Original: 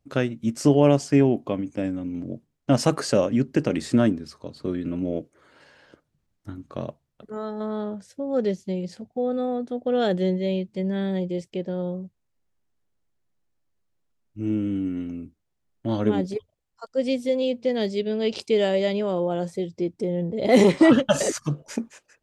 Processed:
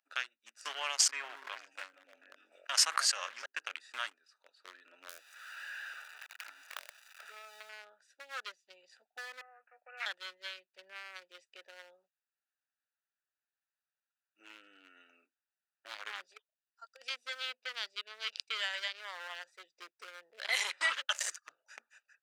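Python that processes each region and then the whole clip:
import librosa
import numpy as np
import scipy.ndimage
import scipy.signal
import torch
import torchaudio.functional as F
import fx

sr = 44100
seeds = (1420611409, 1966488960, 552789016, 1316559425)

y = fx.chain(x, sr, fx.echo_stepped(ms=147, hz=240.0, octaves=1.4, feedback_pct=70, wet_db=-5.0),
    fx.sustainer(db_per_s=29.0), at=(0.94, 3.46))
y = fx.chain(y, sr, fx.crossing_spikes(level_db=-21.5),
    fx.high_shelf(hz=5200.0, db=-9.5),
    fx.band_squash(depth_pct=100), at=(5.09, 7.69))
y = fx.chain(y, sr, fx.highpass(hz=840.0, slope=12),
    fx.resample_bad(factor=8, down='none', up='filtered'), at=(9.41, 10.06))
y = fx.chain(y, sr, fx.highpass(hz=510.0, slope=6),
    fx.over_compress(threshold_db=-28.0, ratio=-0.5), at=(16.29, 17.1))
y = fx.wiener(y, sr, points=41)
y = scipy.signal.sosfilt(scipy.signal.butter(4, 1300.0, 'highpass', fs=sr, output='sos'), y)
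y = fx.band_squash(y, sr, depth_pct=40)
y = y * 10.0 ** (1.5 / 20.0)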